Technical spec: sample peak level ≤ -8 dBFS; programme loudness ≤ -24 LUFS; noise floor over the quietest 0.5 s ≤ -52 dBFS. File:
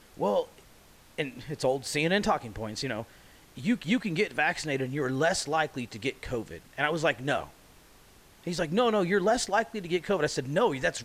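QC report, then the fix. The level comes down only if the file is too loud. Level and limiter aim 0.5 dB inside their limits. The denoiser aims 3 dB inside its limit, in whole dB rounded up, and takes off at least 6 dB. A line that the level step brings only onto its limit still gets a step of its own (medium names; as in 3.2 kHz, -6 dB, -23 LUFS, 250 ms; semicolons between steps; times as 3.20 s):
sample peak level -11.5 dBFS: pass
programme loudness -29.0 LUFS: pass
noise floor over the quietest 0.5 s -56 dBFS: pass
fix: none needed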